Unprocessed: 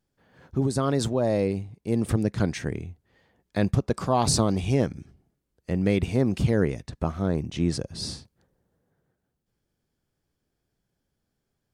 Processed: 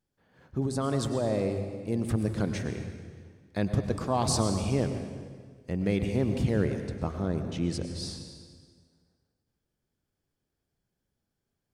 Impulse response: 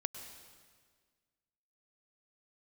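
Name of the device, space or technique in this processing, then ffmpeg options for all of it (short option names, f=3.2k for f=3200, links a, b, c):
stairwell: -filter_complex "[1:a]atrim=start_sample=2205[a];[0:a][a]afir=irnorm=-1:irlink=0,volume=-4dB"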